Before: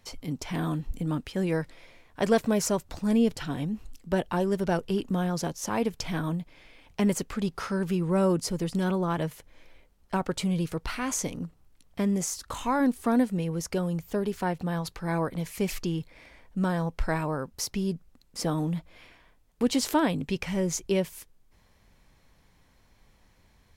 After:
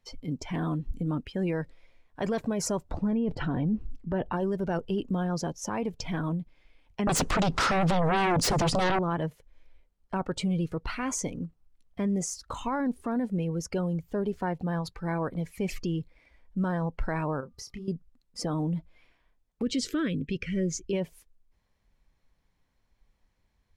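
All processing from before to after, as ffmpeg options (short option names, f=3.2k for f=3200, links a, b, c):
-filter_complex "[0:a]asettb=1/sr,asplit=3[a][b][c];[a]atrim=end=2.914[d];[b]atrim=start=2.91:end=4.33,asetpts=PTS-STARTPTS,afade=t=in:d=0.004:c=qsin,afade=t=out:st=1.416:d=0.004:c=qsin,lowpass=f=1.5k:p=1,acontrast=82[e];[c]atrim=start=4.326[f];[d][e]acrossfade=d=0.004:c1=hsin:c2=qsin[g];[g][f]acrossfade=d=0.004:c1=qsin:c2=hsin,asettb=1/sr,asplit=3[h][i][j];[h]atrim=end=7.074[k];[i]atrim=start=7.07:end=8.99,asetpts=PTS-STARTPTS,afade=t=in:d=0.004:c=qsin,afade=t=out:st=1.916:d=0.004:c=qsin,lowpass=8.7k,acompressor=threshold=-26dB:ratio=10:attack=3.2:release=140:knee=1:detection=peak,aeval=exprs='0.15*sin(PI/2*6.31*val(0)/0.15)':c=same[l];[j]atrim=start=8.986[m];[k][l]acrossfade=d=0.004:c1=hsin:c2=qsin[n];[n][m]acrossfade=d=0.004:c1=qsin:c2=hsin,asettb=1/sr,asplit=3[o][p][q];[o]atrim=end=17.404[r];[p]atrim=start=17.4:end=17.88,asetpts=PTS-STARTPTS,afade=t=in:d=0.004:c=qsin,afade=t=out:st=0.476:d=0.004:c=qsin,acompressor=threshold=-36dB:ratio=5:attack=3.2:release=140:knee=1:detection=peak,aeval=exprs='val(0)+0.000562*sin(2*PI*1200*n/s)':c=same,asplit=2[s][t];[t]adelay=28,volume=-6.5dB[u];[s][u]amix=inputs=2:normalize=0,atrim=end_sample=21168[v];[q]atrim=start=17.876[w];[r][v]acrossfade=d=0.004:c1=hsin:c2=qsin[x];[x][w]acrossfade=d=0.004:c1=qsin:c2=hsin,asettb=1/sr,asplit=3[y][z][aa];[y]atrim=end=19.624[ab];[z]atrim=start=19.62:end=20.93,asetpts=PTS-STARTPTS,afade=t=in:d=0.004:c=qsin,afade=t=out:st=1.306:d=0.004:c=qsin,asuperstop=centerf=810:order=4:qfactor=0.99,highshelf=f=11k:g=-8.5[ac];[aa]atrim=start=20.926[ad];[ab][ac]acrossfade=d=0.004:c1=hsin:c2=qsin[ae];[ae][ad]acrossfade=d=0.004:c1=qsin:c2=hsin,afftdn=nr=13:nf=-41,highshelf=f=10k:g=-6.5,alimiter=limit=-21dB:level=0:latency=1:release=12"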